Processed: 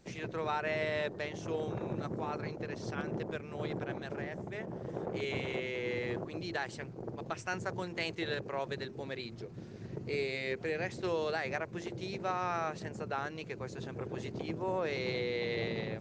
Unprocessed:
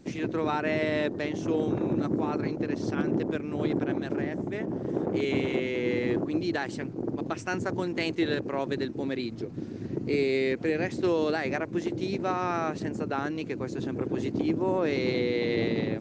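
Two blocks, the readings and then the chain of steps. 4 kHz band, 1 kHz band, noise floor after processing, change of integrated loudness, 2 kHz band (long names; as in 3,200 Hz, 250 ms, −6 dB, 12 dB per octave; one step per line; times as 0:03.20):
−4.0 dB, −4.5 dB, −47 dBFS, −8.0 dB, −4.0 dB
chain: parametric band 280 Hz −13 dB 0.68 octaves
mains-hum notches 50/100/150/200/250/300/350/400 Hz
level −4 dB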